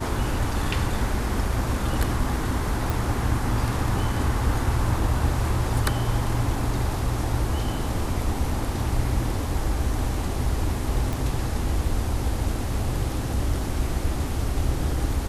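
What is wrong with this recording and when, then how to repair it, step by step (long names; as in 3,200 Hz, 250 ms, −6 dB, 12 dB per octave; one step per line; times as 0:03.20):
0:02.90: click
0:11.13: click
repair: click removal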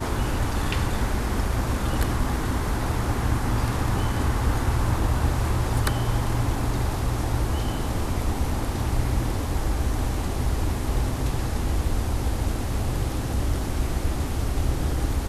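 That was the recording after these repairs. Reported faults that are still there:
none of them is left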